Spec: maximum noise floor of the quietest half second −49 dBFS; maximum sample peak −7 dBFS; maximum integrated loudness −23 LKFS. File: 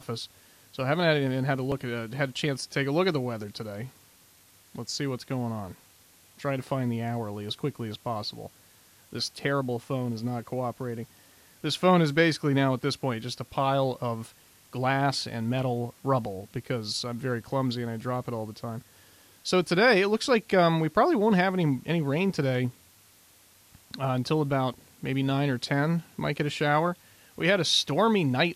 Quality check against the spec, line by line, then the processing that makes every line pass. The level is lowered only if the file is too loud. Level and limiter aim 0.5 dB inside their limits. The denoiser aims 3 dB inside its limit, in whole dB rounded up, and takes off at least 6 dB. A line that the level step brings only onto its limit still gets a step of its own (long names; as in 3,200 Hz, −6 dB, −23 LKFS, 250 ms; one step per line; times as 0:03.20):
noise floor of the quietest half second −58 dBFS: in spec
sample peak −8.0 dBFS: in spec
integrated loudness −27.5 LKFS: in spec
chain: no processing needed